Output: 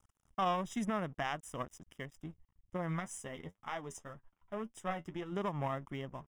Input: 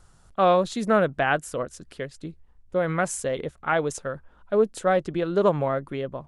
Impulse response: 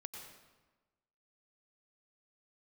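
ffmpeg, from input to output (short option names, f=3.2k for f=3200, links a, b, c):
-filter_complex "[0:a]aecho=1:1:1:0.6,alimiter=limit=-17dB:level=0:latency=1:release=194,aeval=exprs='sgn(val(0))*max(abs(val(0))-0.00398,0)':c=same,aeval=exprs='0.141*(cos(1*acos(clip(val(0)/0.141,-1,1)))-cos(1*PI/2))+0.0126*(cos(2*acos(clip(val(0)/0.141,-1,1)))-cos(2*PI/2))+0.0224*(cos(3*acos(clip(val(0)/0.141,-1,1)))-cos(3*PI/2))+0.00282*(cos(5*acos(clip(val(0)/0.141,-1,1)))-cos(5*PI/2))':c=same,asplit=3[a][b][c];[a]afade=t=out:st=2.76:d=0.02[d];[b]flanger=delay=8.2:depth=4.1:regen=44:speed=1.9:shape=sinusoidal,afade=t=in:st=2.76:d=0.02,afade=t=out:st=5.31:d=0.02[e];[c]afade=t=in:st=5.31:d=0.02[f];[d][e][f]amix=inputs=3:normalize=0,asuperstop=centerf=4300:order=8:qfactor=3.4,volume=-5.5dB"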